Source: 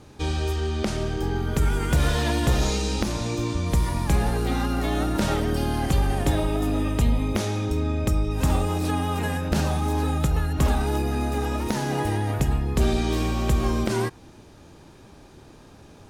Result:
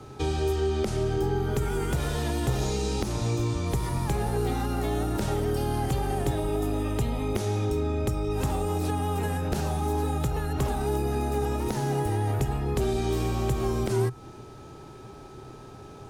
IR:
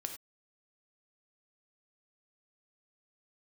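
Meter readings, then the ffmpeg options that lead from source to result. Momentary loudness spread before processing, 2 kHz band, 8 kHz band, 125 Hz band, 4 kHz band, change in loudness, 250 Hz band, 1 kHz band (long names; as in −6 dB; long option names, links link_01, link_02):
4 LU, −6.5 dB, −4.0 dB, −3.0 dB, −6.0 dB, −3.5 dB, −4.5 dB, −2.5 dB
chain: -filter_complex "[0:a]acrossover=split=110|360|7000[link_01][link_02][link_03][link_04];[link_01]acompressor=threshold=-31dB:ratio=4[link_05];[link_02]acompressor=threshold=-35dB:ratio=4[link_06];[link_03]acompressor=threshold=-36dB:ratio=4[link_07];[link_04]acompressor=threshold=-43dB:ratio=4[link_08];[link_05][link_06][link_07][link_08]amix=inputs=4:normalize=0,equalizer=frequency=125:width_type=o:width=0.33:gain=9,equalizer=frequency=400:width_type=o:width=0.33:gain=9,equalizer=frequency=800:width_type=o:width=0.33:gain=6,aeval=exprs='val(0)+0.00251*sin(2*PI*1300*n/s)':channel_layout=same"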